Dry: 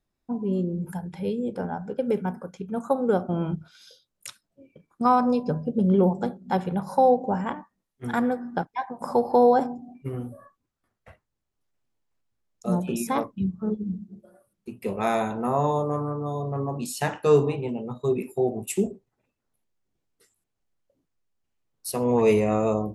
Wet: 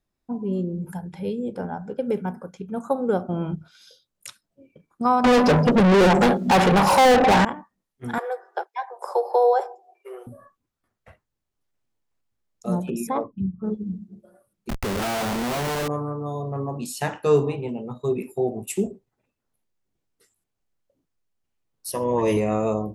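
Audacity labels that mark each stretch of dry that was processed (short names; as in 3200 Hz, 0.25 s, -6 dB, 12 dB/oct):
5.240000	7.450000	overdrive pedal drive 37 dB, tone 5400 Hz, clips at -9 dBFS
8.180000	10.270000	steep high-pass 370 Hz 96 dB/oct
12.900000	13.640000	formant sharpening exponent 1.5
14.690000	15.880000	Schmitt trigger flips at -38.5 dBFS
21.910000	22.370000	ripple EQ crests per octave 1.2, crest to trough 11 dB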